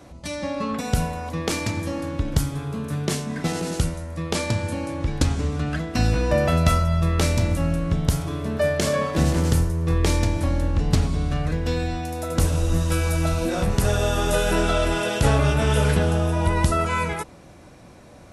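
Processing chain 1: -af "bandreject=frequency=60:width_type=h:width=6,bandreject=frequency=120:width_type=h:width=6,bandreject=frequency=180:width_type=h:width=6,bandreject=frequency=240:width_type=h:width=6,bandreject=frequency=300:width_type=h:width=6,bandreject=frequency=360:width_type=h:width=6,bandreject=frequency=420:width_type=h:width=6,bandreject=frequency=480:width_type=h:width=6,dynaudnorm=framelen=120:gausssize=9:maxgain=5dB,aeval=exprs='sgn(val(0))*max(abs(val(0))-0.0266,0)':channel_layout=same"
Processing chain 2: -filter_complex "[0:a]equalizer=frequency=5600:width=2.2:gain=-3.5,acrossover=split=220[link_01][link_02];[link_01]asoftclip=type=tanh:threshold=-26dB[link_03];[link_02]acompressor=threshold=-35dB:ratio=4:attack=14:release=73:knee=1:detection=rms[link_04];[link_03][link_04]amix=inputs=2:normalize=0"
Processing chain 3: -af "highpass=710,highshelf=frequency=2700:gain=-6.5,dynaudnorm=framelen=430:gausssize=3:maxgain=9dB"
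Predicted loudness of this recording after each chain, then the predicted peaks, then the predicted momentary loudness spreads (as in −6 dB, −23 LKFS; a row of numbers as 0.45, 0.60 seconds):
−21.0, −30.0, −23.0 LKFS; −2.5, −16.5, −4.5 dBFS; 9, 4, 11 LU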